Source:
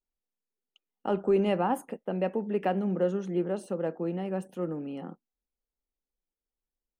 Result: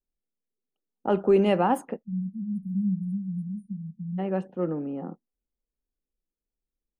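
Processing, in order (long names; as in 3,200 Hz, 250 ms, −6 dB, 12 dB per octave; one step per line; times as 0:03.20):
low-pass that shuts in the quiet parts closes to 460 Hz, open at −22.5 dBFS
time-frequency box erased 0:02.03–0:04.19, 230–9,000 Hz
level +4.5 dB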